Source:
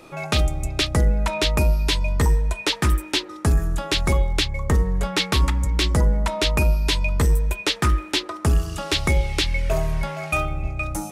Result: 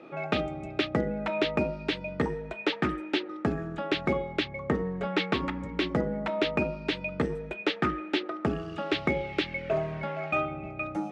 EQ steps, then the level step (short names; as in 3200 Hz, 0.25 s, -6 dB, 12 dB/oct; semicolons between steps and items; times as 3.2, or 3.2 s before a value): Chebyshev band-pass 230–2900 Hz, order 2; high shelf 2100 Hz -10 dB; notch 1000 Hz, Q 5.5; 0.0 dB